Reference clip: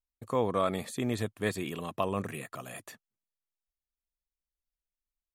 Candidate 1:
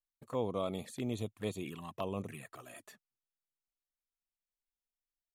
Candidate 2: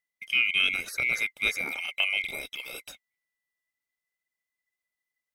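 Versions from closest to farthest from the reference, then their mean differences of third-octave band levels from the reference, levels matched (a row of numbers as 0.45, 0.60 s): 1, 2; 2.5, 12.0 dB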